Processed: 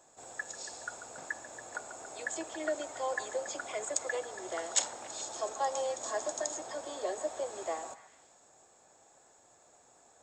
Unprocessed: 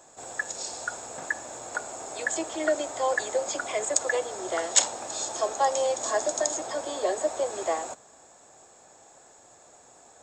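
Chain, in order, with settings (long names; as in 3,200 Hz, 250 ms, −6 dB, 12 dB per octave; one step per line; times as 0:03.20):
echo through a band-pass that steps 140 ms, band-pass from 1,100 Hz, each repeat 0.7 octaves, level −9.5 dB
level −8.5 dB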